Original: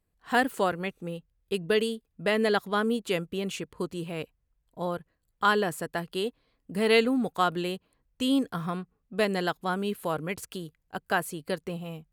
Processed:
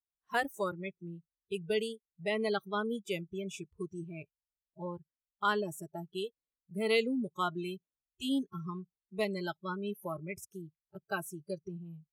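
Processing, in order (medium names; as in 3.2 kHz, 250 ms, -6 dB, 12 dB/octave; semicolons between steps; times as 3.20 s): spectral noise reduction 27 dB; trim -6.5 dB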